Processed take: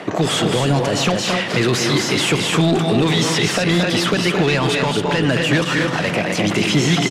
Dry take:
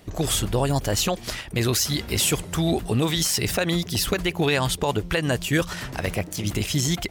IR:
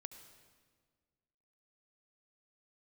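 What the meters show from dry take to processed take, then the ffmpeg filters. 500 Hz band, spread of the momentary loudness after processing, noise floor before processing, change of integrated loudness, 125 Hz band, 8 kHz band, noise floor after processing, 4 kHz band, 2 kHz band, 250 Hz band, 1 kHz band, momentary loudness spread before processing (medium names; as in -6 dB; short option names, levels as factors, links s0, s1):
+7.5 dB, 2 LU, -39 dBFS, +6.5 dB, +5.5 dB, +0.5 dB, -23 dBFS, +7.0 dB, +9.5 dB, +8.5 dB, +8.5 dB, 6 LU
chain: -filter_complex "[0:a]aecho=1:1:218.7|256.6:0.355|0.398,asplit=2[s0][s1];[s1]highpass=f=720:p=1,volume=11.2,asoftclip=type=tanh:threshold=0.422[s2];[s0][s2]amix=inputs=2:normalize=0,lowpass=f=2600:p=1,volume=0.501,lowpass=8400,areverse,acompressor=mode=upward:threshold=0.112:ratio=2.5,areverse,highpass=f=130:w=0.5412,highpass=f=130:w=1.3066,asplit=2[s3][s4];[1:a]atrim=start_sample=2205,asetrate=61740,aresample=44100,lowpass=3000[s5];[s4][s5]afir=irnorm=-1:irlink=0,volume=3.16[s6];[s3][s6]amix=inputs=2:normalize=0,asoftclip=type=tanh:threshold=0.562,acrossover=split=270|3000[s7][s8][s9];[s8]acompressor=threshold=0.0794:ratio=6[s10];[s7][s10][s9]amix=inputs=3:normalize=0,volume=1.26"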